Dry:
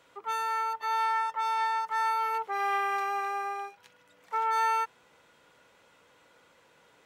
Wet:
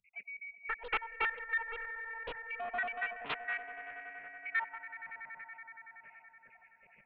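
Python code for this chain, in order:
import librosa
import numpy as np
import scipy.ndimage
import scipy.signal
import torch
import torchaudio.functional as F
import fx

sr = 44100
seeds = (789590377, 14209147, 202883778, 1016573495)

p1 = fx.spec_dropout(x, sr, seeds[0], share_pct=79)
p2 = p1 + fx.echo_swell(p1, sr, ms=94, loudest=5, wet_db=-16, dry=0)
p3 = fx.freq_invert(p2, sr, carrier_hz=2700)
p4 = fx.fixed_phaser(p3, sr, hz=320.0, stages=6)
p5 = fx.doppler_dist(p4, sr, depth_ms=0.8)
y = F.gain(torch.from_numpy(p5), 5.5).numpy()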